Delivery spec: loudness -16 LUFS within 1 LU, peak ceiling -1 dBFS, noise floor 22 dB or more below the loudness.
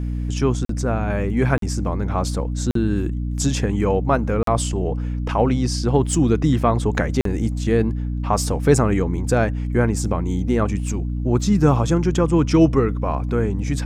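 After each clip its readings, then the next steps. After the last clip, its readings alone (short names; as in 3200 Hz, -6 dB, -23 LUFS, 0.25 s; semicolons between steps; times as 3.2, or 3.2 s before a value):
dropouts 5; longest dropout 43 ms; hum 60 Hz; harmonics up to 300 Hz; hum level -22 dBFS; loudness -20.5 LUFS; peak -3.5 dBFS; loudness target -16.0 LUFS
-> interpolate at 0.65/1.58/2.71/4.43/7.21, 43 ms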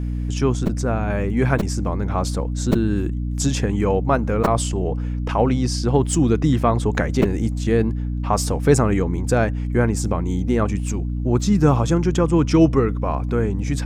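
dropouts 0; hum 60 Hz; harmonics up to 300 Hz; hum level -22 dBFS
-> de-hum 60 Hz, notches 5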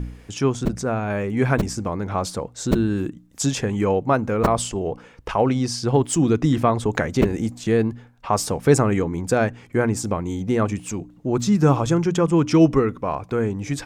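hum none; loudness -21.5 LUFS; peak -2.0 dBFS; loudness target -16.0 LUFS
-> gain +5.5 dB; limiter -1 dBFS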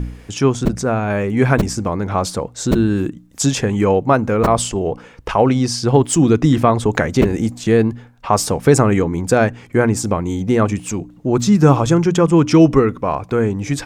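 loudness -16.5 LUFS; peak -1.0 dBFS; noise floor -44 dBFS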